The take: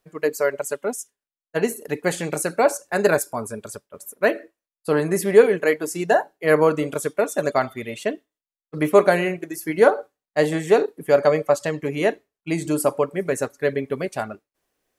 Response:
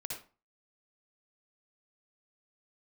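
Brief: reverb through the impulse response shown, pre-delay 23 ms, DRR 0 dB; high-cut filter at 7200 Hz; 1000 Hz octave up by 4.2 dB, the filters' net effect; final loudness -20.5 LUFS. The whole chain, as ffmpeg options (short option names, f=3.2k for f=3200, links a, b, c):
-filter_complex "[0:a]lowpass=7.2k,equalizer=f=1k:t=o:g=6,asplit=2[a][b];[1:a]atrim=start_sample=2205,adelay=23[c];[b][c]afir=irnorm=-1:irlink=0,volume=0.5dB[d];[a][d]amix=inputs=2:normalize=0,volume=-3.5dB"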